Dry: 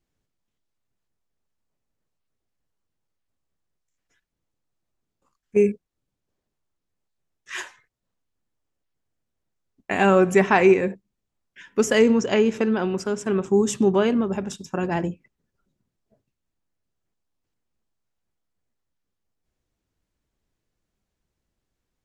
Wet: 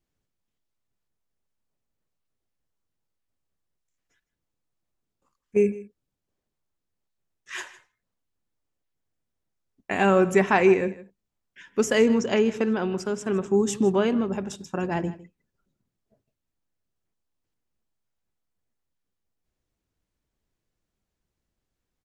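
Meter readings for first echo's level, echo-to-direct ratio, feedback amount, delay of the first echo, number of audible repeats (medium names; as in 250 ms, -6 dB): -18.0 dB, -18.0 dB, no regular repeats, 157 ms, 1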